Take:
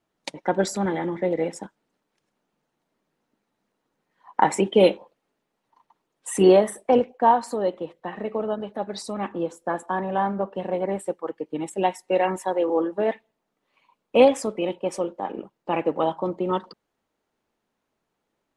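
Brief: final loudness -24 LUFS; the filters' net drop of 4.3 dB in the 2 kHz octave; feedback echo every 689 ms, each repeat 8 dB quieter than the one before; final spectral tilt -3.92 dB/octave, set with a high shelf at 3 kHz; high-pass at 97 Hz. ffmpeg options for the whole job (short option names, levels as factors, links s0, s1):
-af "highpass=97,equalizer=f=2000:t=o:g=-3.5,highshelf=f=3000:g=-5.5,aecho=1:1:689|1378|2067|2756|3445:0.398|0.159|0.0637|0.0255|0.0102,volume=1.06"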